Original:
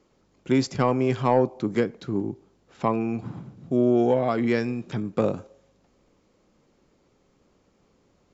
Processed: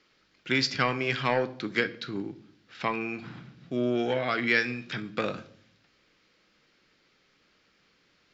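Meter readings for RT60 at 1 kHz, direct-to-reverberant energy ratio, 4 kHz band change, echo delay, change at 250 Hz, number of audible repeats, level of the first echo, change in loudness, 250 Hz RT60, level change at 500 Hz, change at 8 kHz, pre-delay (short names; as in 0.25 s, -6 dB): 0.45 s, 11.0 dB, +8.0 dB, none, -8.0 dB, none, none, -4.0 dB, 0.95 s, -7.0 dB, n/a, 6 ms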